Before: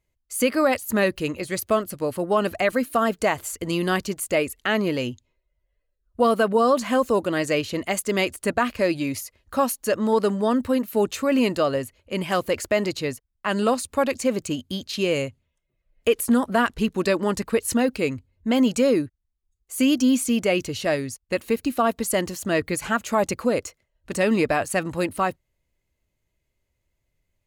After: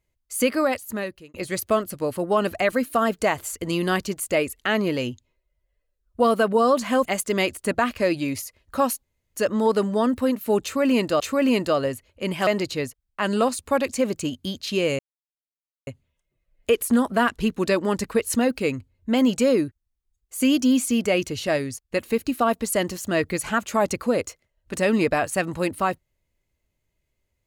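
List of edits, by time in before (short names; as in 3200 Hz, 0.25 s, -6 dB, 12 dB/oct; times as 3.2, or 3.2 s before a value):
0.47–1.34 fade out
7.05–7.84 cut
9.82 insert room tone 0.32 s
11.1–11.67 loop, 2 plays
12.37–12.73 cut
15.25 insert silence 0.88 s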